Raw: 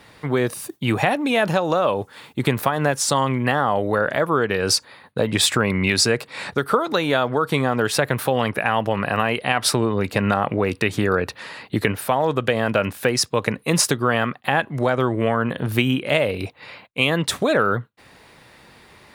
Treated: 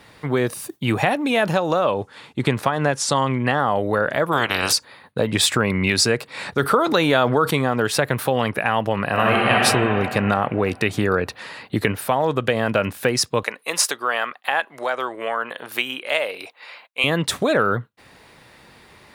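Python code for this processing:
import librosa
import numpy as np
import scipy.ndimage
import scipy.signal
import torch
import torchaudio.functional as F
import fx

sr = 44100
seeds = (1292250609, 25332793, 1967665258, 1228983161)

y = fx.lowpass(x, sr, hz=8300.0, slope=12, at=(1.84, 3.59))
y = fx.spec_clip(y, sr, under_db=26, at=(4.31, 4.71), fade=0.02)
y = fx.env_flatten(y, sr, amount_pct=50, at=(6.59, 7.51))
y = fx.reverb_throw(y, sr, start_s=9.1, length_s=0.47, rt60_s=2.7, drr_db=-3.5)
y = fx.highpass(y, sr, hz=650.0, slope=12, at=(13.43, 17.04))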